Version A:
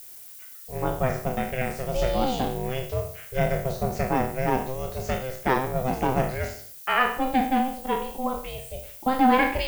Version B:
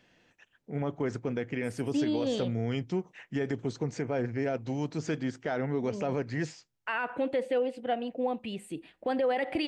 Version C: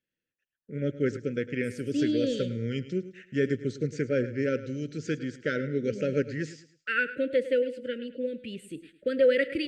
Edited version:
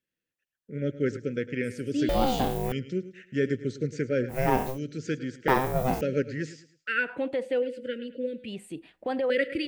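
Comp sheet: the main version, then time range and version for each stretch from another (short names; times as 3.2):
C
2.09–2.72 from A
4.33–4.74 from A, crossfade 0.10 s
5.48–6.01 from A
7.11–7.58 from B, crossfade 0.24 s
8.48–9.3 from B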